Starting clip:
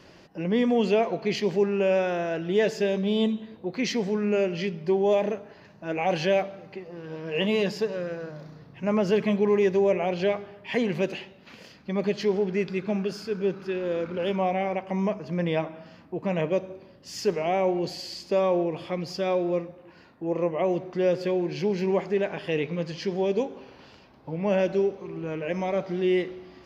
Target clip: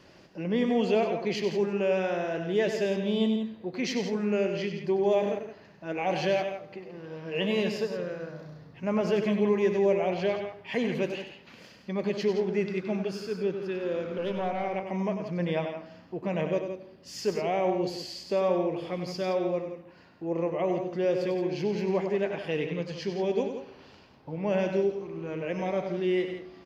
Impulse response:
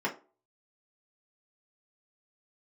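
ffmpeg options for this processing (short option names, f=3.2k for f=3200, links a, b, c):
-filter_complex "[0:a]asettb=1/sr,asplit=3[a][b][c];[a]atrim=end=14.184[d];[b]atrim=start=14.18:end=14.64,asetpts=PTS-STARTPTS,afade=t=in:d=0.004:c=qsin,afade=t=out:st=0.456:d=0.004:c=qsin,aeval=exprs='(tanh(7.94*val(0)+0.3)-tanh(0.3))/7.94':c=same[e];[c]atrim=start=14.636[f];[d][e]acrossfade=d=0.004:c1=hsin:c2=qsin[g];[g][f]acrossfade=d=0.004:c1=qsin:c2=hsin,aecho=1:1:96.21|169.1:0.398|0.316,volume=-3.5dB"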